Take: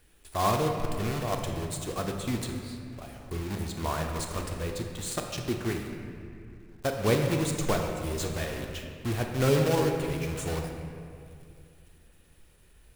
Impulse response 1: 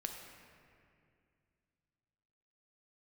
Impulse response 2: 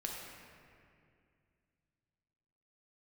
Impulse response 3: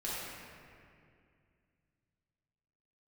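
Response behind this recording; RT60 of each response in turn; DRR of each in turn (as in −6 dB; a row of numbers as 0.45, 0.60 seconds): 1; 2.3, 2.3, 2.3 seconds; 2.5, −2.0, −9.5 decibels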